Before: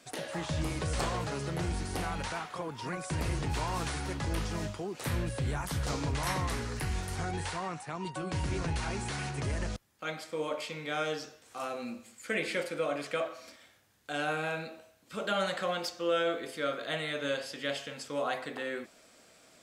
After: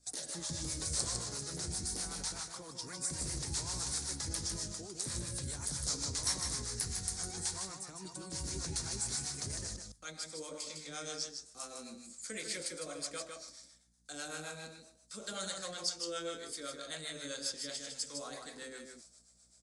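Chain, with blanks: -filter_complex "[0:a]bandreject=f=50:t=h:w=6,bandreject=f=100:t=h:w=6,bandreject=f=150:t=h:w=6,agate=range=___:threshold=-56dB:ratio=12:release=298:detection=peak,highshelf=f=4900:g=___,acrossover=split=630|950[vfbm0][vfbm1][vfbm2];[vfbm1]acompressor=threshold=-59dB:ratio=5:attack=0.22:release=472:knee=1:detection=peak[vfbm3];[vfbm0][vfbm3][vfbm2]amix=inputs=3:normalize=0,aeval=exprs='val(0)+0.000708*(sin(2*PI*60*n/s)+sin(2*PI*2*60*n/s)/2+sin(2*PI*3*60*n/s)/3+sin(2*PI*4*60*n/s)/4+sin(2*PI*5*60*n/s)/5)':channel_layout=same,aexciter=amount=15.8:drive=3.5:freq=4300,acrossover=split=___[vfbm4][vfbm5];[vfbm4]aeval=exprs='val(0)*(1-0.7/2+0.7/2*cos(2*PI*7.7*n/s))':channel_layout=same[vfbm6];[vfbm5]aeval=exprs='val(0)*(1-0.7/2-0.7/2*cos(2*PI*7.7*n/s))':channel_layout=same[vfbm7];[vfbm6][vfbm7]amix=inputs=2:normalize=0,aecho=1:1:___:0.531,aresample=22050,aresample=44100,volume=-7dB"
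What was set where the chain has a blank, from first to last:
-10dB, -8.5, 510, 155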